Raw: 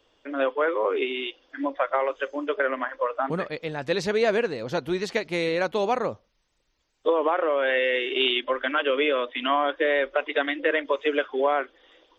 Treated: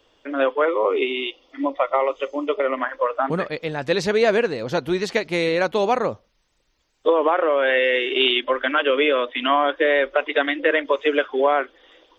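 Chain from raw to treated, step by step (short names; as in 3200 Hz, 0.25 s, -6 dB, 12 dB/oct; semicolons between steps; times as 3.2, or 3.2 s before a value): 0.65–2.78 Butterworth band-stop 1600 Hz, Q 3.3; gain +4.5 dB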